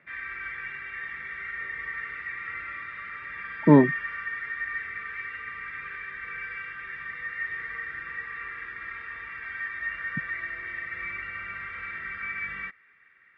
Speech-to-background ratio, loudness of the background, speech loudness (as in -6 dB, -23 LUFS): 14.0 dB, -34.0 LUFS, -20.0 LUFS